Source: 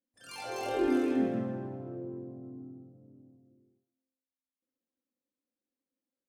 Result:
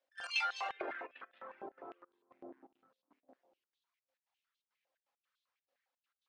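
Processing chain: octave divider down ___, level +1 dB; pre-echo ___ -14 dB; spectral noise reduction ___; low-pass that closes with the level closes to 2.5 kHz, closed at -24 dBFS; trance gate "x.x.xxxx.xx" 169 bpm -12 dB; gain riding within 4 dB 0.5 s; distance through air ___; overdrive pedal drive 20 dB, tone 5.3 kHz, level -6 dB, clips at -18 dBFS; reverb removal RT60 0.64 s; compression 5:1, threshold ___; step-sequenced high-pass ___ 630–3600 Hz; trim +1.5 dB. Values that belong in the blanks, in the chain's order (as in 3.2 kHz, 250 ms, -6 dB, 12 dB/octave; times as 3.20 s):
2 oct, 55 ms, 9 dB, 120 m, -40 dBFS, 9.9 Hz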